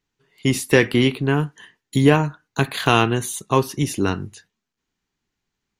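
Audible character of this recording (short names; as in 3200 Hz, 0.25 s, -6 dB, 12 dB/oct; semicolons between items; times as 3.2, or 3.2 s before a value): noise floor -81 dBFS; spectral tilt -5.5 dB/oct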